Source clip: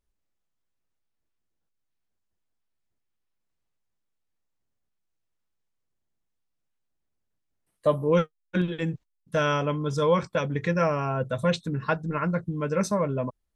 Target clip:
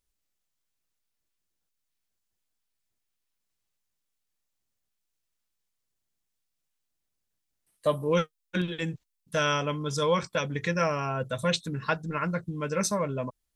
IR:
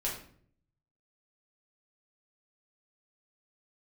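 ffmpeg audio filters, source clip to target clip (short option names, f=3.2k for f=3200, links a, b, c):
-af "highshelf=f=2.2k:g=11.5,volume=-4dB"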